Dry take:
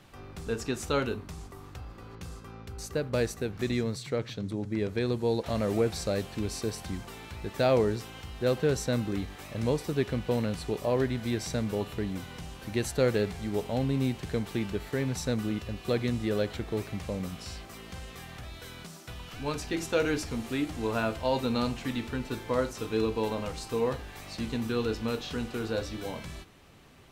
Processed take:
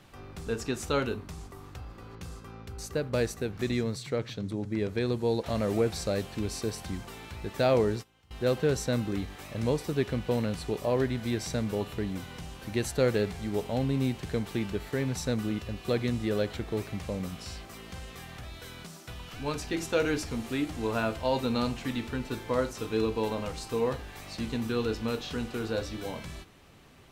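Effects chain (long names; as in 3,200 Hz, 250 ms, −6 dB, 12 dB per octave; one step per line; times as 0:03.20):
0:07.74–0:08.31: noise gate −34 dBFS, range −21 dB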